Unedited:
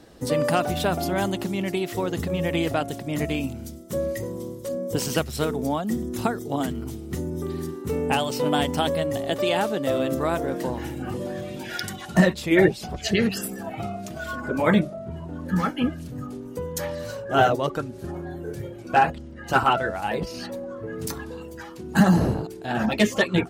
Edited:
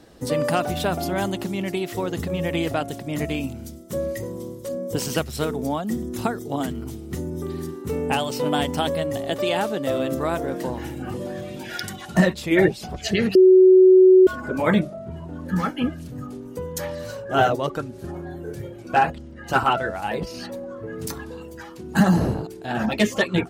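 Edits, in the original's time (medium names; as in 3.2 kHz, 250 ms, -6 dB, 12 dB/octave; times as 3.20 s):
13.35–14.27 s: bleep 373 Hz -8 dBFS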